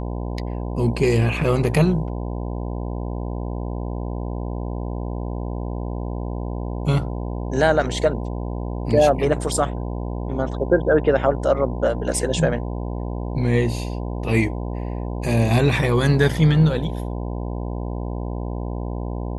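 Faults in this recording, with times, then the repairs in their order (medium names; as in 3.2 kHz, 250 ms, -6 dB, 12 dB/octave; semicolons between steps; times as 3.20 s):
buzz 60 Hz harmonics 17 -27 dBFS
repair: de-hum 60 Hz, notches 17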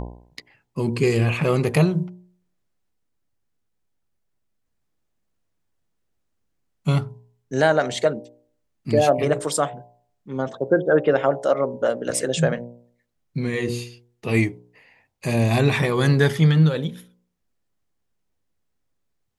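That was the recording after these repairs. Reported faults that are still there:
nothing left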